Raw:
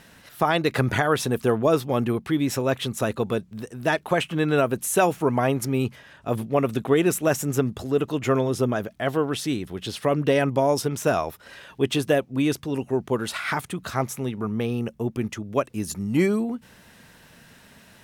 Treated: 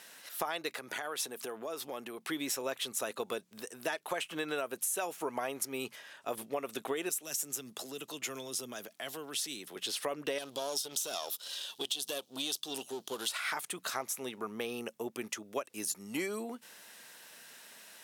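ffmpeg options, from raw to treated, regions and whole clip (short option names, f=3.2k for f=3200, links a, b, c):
-filter_complex "[0:a]asettb=1/sr,asplit=3[a][b][c];[a]atrim=end=0.754[d];[b]atrim=start=0.75:end=2.29,asetpts=PTS-STARTPTS,afade=t=in:d=0.004:c=qsin,afade=t=out:st=1.536:d=0.004:c=qsin,acompressor=threshold=-28dB:ratio=10:attack=3.2:release=140:knee=1:detection=peak,highpass=120[e];[c]atrim=start=2.286[f];[d][e]acrossfade=d=0.004:c1=hsin:c2=qsin[g];[g][f]acrossfade=d=0.004:c1=qsin:c2=hsin,asettb=1/sr,asplit=3[h][i][j];[h]atrim=end=7.094[k];[i]atrim=start=7.09:end=9.76,asetpts=PTS-STARTPTS,afade=t=in:d=0.004:c=qsin,afade=t=out:st=2.666:d=0.004:c=qsin,highpass=130,acrossover=split=200|3000[l][m][n];[m]acompressor=threshold=-36dB:ratio=6:attack=3.2:release=140:knee=2.83:detection=peak[o];[l][o][n]amix=inputs=3:normalize=0[p];[j]atrim=start=9.756[q];[k][p]acrossfade=d=0.004:c1=hsin:c2=qsin[r];[r][q]acrossfade=d=0.004:c1=qsin:c2=hsin,asettb=1/sr,asplit=3[s][t][u];[s]atrim=end=10.384[v];[t]atrim=start=10.38:end=13.29,asetpts=PTS-STARTPTS,afade=t=in:d=0.004:c=qsin,afade=t=out:st=2.906:d=0.004:c=qsin,aeval=exprs='if(lt(val(0),0),0.447*val(0),val(0))':c=same,highshelf=f=2.7k:t=q:w=3:g=8,acompressor=threshold=-24dB:ratio=4:attack=3.2:release=140:knee=1:detection=peak[w];[u]atrim=start=13.286[x];[v][w]acrossfade=d=0.004:c1=hsin:c2=qsin[y];[y][x]acrossfade=d=0.004:c1=qsin:c2=hsin,highpass=420,equalizer=f=12k:t=o:w=2.6:g=9.5,acompressor=threshold=-27dB:ratio=6,volume=-5dB"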